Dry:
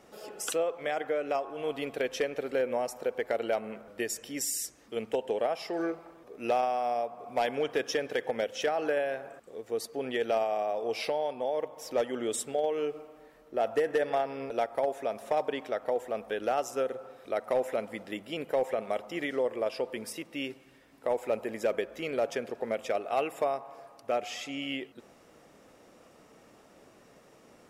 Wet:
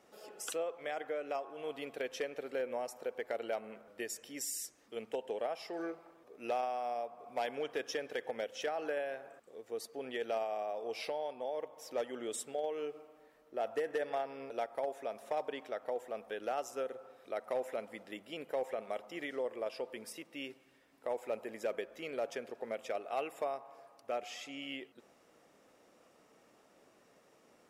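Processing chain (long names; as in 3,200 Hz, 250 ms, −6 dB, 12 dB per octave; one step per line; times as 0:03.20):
low-shelf EQ 150 Hz −10 dB
level −7 dB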